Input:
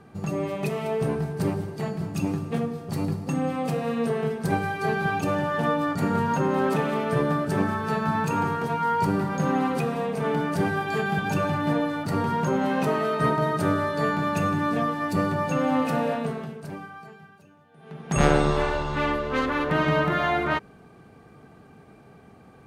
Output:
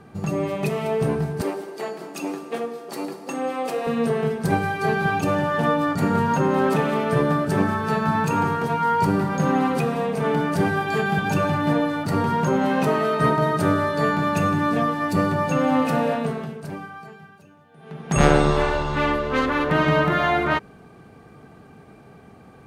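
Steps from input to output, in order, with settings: 1.41–3.87 HPF 310 Hz 24 dB/oct; gain +3.5 dB

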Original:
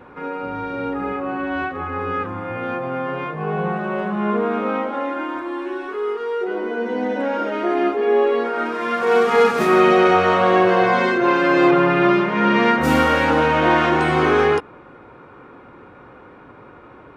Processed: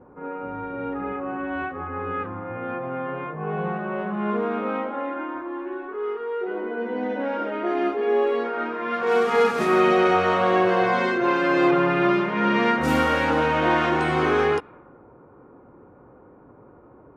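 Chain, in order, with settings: low-pass opened by the level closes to 710 Hz, open at -13 dBFS; gain -4.5 dB

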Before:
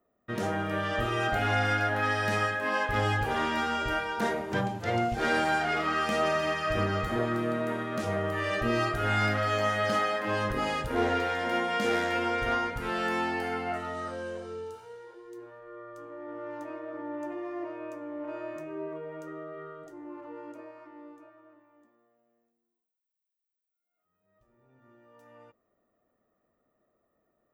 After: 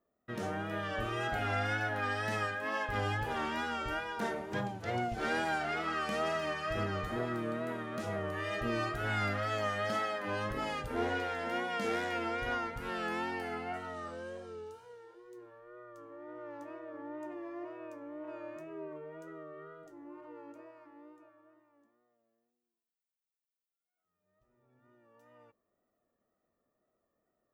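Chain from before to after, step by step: wow and flutter 56 cents; gain -6.5 dB

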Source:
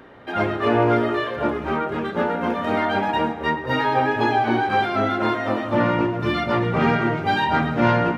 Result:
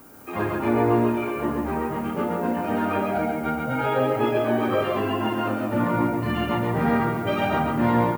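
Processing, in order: formant shift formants -4 st; added noise violet -48 dBFS; loudspeakers at several distances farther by 19 m -9 dB, 47 m -3 dB; gain -4.5 dB

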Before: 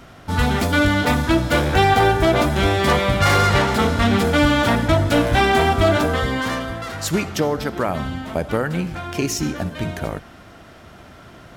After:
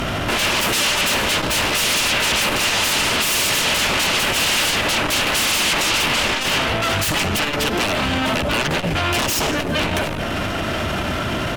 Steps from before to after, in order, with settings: 7.42–8.33 tone controls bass -5 dB, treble +2 dB; in parallel at -1.5 dB: compressor 10:1, threshold -28 dBFS, peak gain reduction 16.5 dB; on the sum: echo 0.167 s -21 dB; sine folder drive 20 dB, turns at -4 dBFS; on a send at -12.5 dB: reverb RT60 0.60 s, pre-delay 3 ms; on the sum: limiter -11 dBFS, peak gain reduction 11 dB; bell 2800 Hz +6.5 dB 0.52 oct; core saturation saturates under 120 Hz; gain -4 dB

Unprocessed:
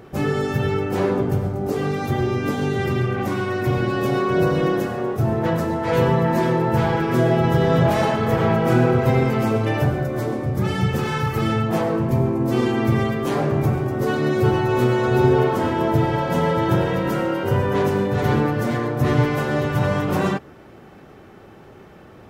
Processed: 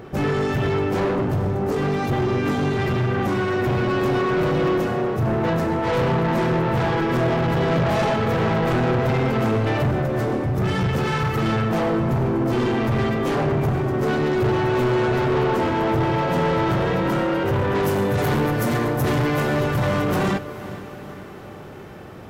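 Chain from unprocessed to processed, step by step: bell 13000 Hz -6 dB 1.4 oct, from 17.83 s +10 dB, from 19.22 s +2.5 dB; soft clip -22 dBFS, distortion -8 dB; diffused feedback echo 0.462 s, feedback 58%, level -15 dB; gain +4.5 dB

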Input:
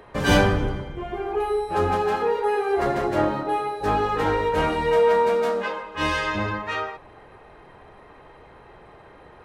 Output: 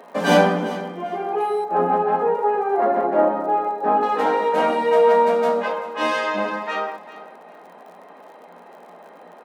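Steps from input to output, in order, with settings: 1.64–4.03 LPF 1600 Hz 12 dB/oct; crackle 70/s -41 dBFS; rippled Chebyshev high-pass 170 Hz, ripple 9 dB; feedback echo 0.395 s, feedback 23%, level -16 dB; gain +8 dB

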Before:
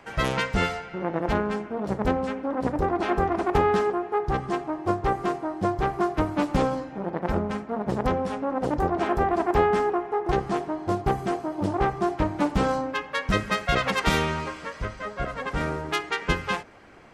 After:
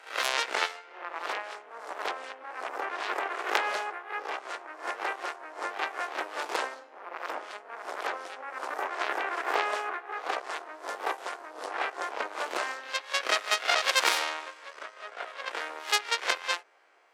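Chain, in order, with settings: spectral swells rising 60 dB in 0.50 s; added harmonics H 3 -12 dB, 4 -10 dB, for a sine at -5.5 dBFS; Bessel high-pass 650 Hz, order 6; gain +1 dB

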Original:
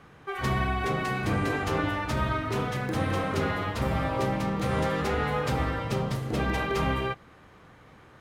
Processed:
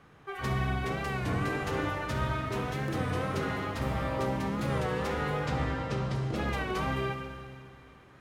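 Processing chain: 3.03–4.27 requantised 12-bit, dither none; 5.4–6.36 LPF 7000 Hz 12 dB/oct; reverb RT60 2.4 s, pre-delay 47 ms, DRR 5 dB; record warp 33 1/3 rpm, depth 100 cents; gain -5 dB

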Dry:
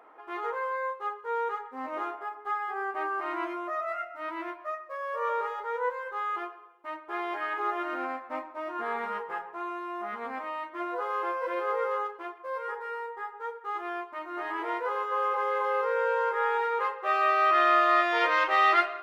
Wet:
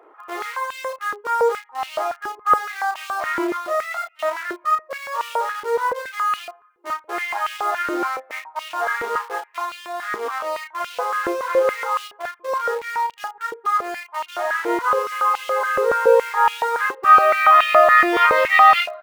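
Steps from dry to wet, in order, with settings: reverb removal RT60 0.57 s; in parallel at -5 dB: bit-crush 6-bit; on the sum: doubler 32 ms -5 dB; stepped high-pass 7.1 Hz 370–2800 Hz; gain +1 dB

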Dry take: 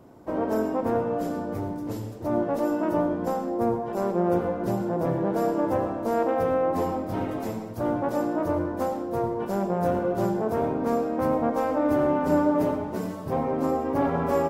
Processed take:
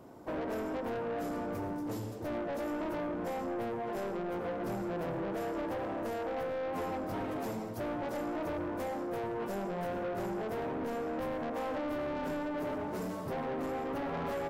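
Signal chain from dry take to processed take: low shelf 220 Hz -5.5 dB; compressor, threshold -26 dBFS, peak gain reduction 8 dB; soft clip -32.5 dBFS, distortion -9 dB

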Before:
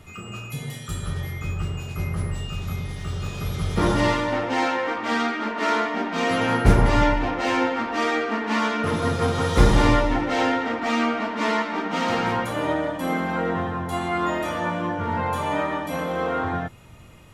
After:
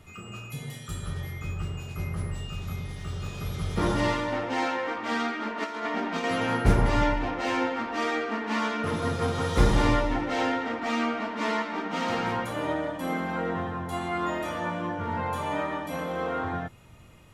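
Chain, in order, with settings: 5.64–6.24 negative-ratio compressor -25 dBFS, ratio -0.5; gain -5 dB

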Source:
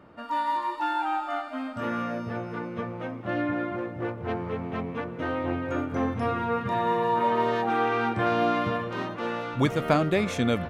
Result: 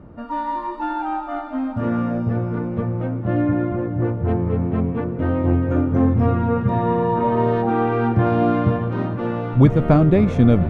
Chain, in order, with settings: tilt -4.5 dB/oct; diffused feedback echo 0.553 s, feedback 49%, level -15.5 dB; gain +1.5 dB

